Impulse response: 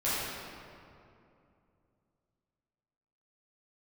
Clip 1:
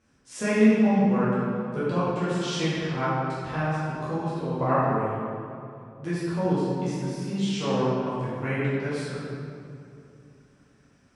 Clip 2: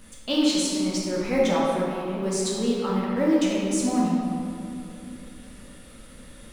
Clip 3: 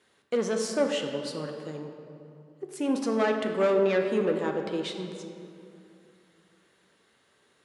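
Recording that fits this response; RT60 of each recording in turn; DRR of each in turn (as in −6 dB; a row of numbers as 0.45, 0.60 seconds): 1; 2.6, 2.6, 2.6 seconds; −12.0, −6.0, 3.5 decibels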